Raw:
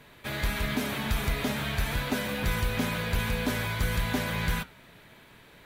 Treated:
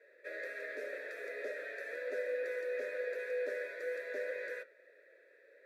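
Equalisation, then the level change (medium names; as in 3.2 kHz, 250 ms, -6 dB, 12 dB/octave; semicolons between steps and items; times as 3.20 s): vowel filter e; high-pass 290 Hz 24 dB/octave; static phaser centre 810 Hz, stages 6; +5.5 dB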